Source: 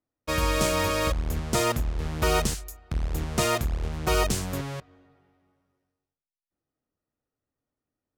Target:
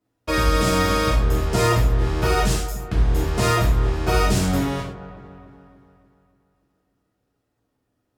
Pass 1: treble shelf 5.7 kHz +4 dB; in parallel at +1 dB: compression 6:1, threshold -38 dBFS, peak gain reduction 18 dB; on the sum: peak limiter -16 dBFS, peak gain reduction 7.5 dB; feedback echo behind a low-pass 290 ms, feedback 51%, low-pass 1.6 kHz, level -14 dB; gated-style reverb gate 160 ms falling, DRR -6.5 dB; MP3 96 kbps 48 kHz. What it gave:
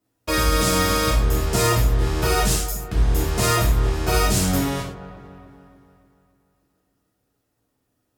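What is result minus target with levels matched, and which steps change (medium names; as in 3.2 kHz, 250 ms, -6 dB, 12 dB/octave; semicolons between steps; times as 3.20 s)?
8 kHz band +5.5 dB
change: treble shelf 5.7 kHz -7 dB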